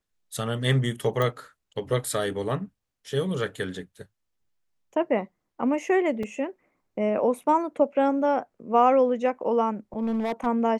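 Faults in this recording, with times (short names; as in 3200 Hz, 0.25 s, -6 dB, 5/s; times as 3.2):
1.22 pop -14 dBFS
6.23 gap 3.6 ms
9.98–10.47 clipped -22.5 dBFS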